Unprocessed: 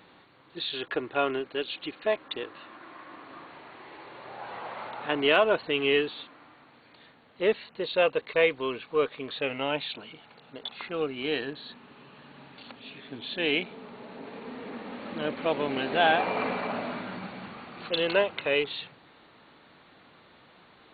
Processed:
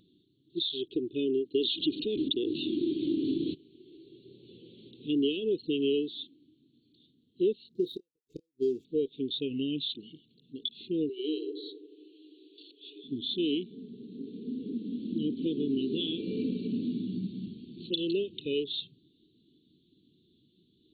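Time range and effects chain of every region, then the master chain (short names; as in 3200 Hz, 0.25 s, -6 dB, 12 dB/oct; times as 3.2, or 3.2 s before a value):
1.54–3.53 whine 1600 Hz -57 dBFS + fast leveller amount 70%
7.68–8.85 median filter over 15 samples + flipped gate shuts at -21 dBFS, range -40 dB + doubler 28 ms -14 dB
11.09–13.04 rippled Chebyshev high-pass 300 Hz, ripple 3 dB + darkening echo 87 ms, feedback 77%, low-pass 810 Hz, level -7 dB + three-band squash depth 40%
whole clip: elliptic band-stop 370–3300 Hz, stop band 40 dB; compressor 4:1, threshold -36 dBFS; spectral expander 1.5:1; gain +5.5 dB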